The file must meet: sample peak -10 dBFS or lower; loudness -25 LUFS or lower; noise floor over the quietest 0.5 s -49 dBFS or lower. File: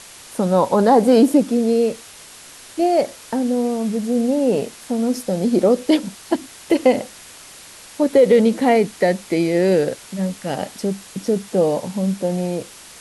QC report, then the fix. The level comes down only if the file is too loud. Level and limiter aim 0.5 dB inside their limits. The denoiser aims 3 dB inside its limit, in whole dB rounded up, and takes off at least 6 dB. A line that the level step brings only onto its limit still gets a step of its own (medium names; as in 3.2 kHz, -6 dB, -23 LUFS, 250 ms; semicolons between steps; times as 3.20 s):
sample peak -4.5 dBFS: fail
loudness -19.0 LUFS: fail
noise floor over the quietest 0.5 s -41 dBFS: fail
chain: noise reduction 6 dB, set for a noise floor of -41 dBFS; trim -6.5 dB